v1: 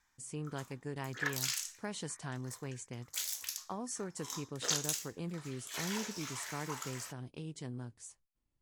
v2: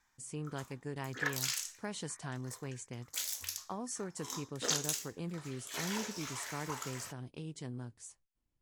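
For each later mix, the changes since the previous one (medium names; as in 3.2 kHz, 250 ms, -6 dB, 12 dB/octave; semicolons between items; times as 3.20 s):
background: remove high-pass 670 Hz 6 dB/octave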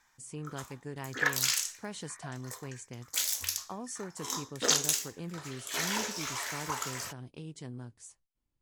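background +7.0 dB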